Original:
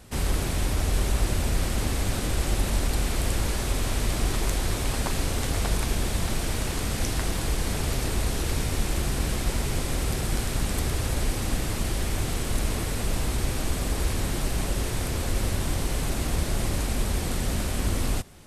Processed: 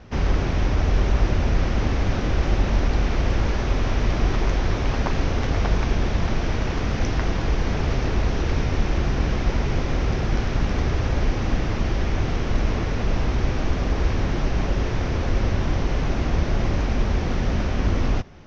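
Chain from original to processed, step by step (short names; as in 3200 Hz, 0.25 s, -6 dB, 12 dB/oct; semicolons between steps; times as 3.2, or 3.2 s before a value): steep low-pass 6000 Hz 72 dB/oct; bell 4400 Hz -9.5 dB 1.1 oct; gain +5 dB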